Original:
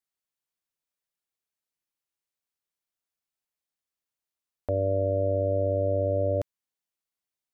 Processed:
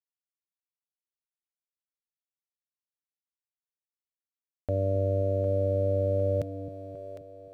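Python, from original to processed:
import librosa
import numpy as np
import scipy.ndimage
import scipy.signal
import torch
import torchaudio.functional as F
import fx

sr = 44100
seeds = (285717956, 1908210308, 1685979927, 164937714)

y = np.sign(x) * np.maximum(np.abs(x) - 10.0 ** (-60.0 / 20.0), 0.0)
y = fx.graphic_eq_15(y, sr, hz=(160, 400, 1000), db=(8, -4, -9))
y = fx.echo_split(y, sr, split_hz=450.0, low_ms=265, high_ms=756, feedback_pct=52, wet_db=-8.5)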